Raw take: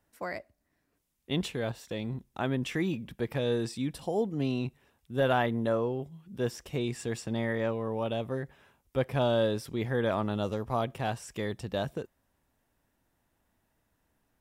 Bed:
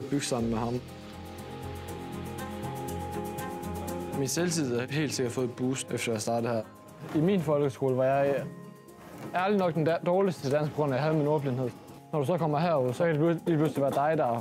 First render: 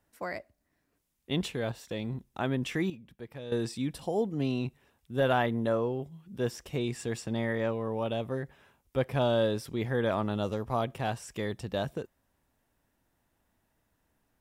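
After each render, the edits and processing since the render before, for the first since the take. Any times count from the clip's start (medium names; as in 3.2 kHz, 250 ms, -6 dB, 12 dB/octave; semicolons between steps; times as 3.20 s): 2.90–3.52 s: gain -11.5 dB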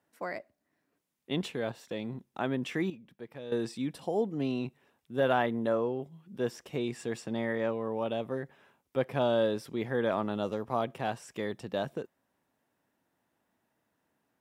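high-pass 170 Hz 12 dB/octave; treble shelf 3.8 kHz -6 dB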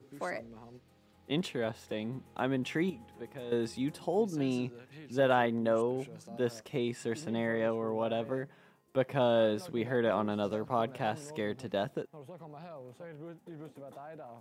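add bed -21 dB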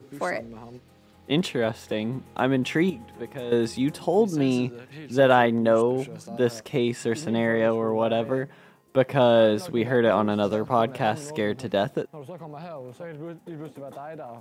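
trim +9 dB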